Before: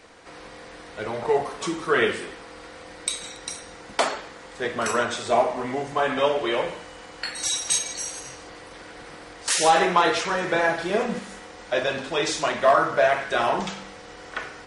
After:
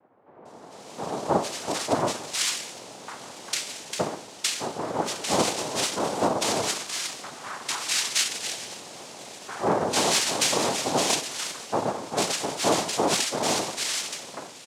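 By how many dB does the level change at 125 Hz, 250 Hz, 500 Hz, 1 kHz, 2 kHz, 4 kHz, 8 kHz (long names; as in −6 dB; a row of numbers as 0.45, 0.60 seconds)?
+1.0, 0.0, −4.5, −4.0, −5.5, +3.5, +3.0 decibels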